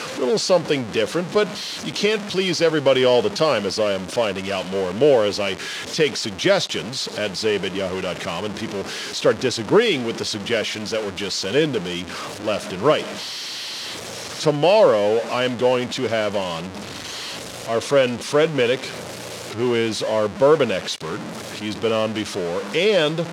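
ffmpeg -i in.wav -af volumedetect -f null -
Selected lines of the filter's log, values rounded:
mean_volume: -21.2 dB
max_volume: -3.4 dB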